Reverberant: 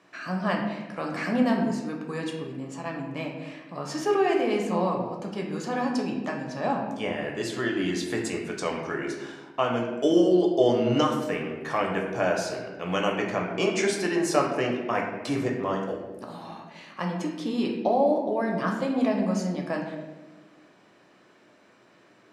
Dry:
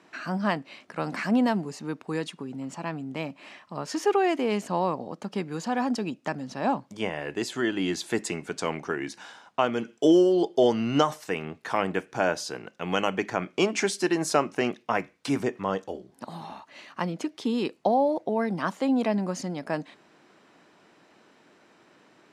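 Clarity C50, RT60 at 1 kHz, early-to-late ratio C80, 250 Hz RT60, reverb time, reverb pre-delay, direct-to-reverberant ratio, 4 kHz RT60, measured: 4.5 dB, 1.0 s, 6.5 dB, 1.8 s, 1.2 s, 4 ms, 0.0 dB, 0.70 s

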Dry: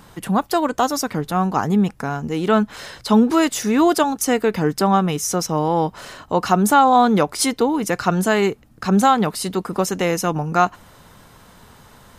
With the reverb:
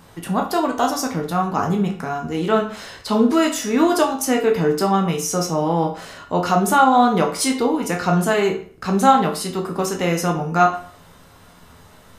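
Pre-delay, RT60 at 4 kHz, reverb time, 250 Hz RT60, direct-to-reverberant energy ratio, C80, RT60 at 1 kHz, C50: 11 ms, 0.40 s, 0.45 s, 0.45 s, 0.5 dB, 13.5 dB, 0.45 s, 9.0 dB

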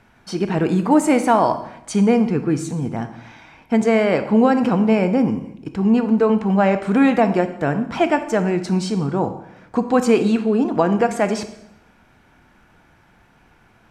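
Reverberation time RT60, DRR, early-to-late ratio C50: 0.80 s, 9.0 dB, 11.0 dB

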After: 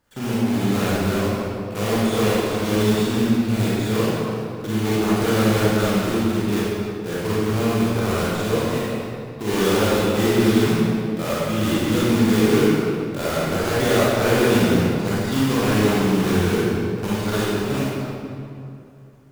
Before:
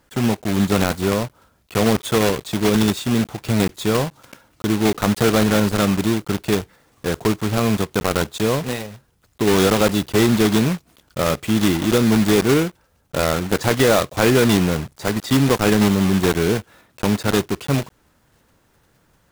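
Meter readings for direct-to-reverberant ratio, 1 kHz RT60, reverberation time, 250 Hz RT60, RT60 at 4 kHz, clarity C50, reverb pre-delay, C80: −9.0 dB, 2.5 s, 2.6 s, 2.8 s, 1.6 s, −6.0 dB, 27 ms, −2.5 dB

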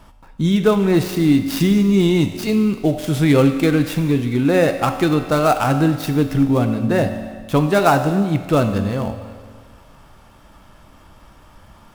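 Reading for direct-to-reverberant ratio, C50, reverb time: 6.5 dB, 8.5 dB, 1.7 s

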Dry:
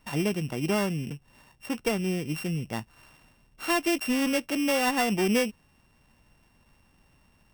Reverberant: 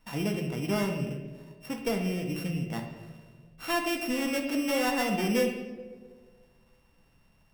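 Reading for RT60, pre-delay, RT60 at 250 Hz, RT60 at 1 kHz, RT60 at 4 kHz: 1.6 s, 4 ms, 1.8 s, 1.2 s, 0.80 s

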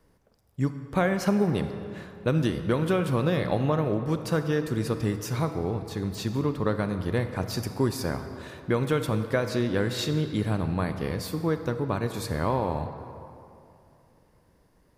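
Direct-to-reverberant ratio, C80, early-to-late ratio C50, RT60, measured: 8.0 dB, 9.5 dB, 8.5 dB, 2.8 s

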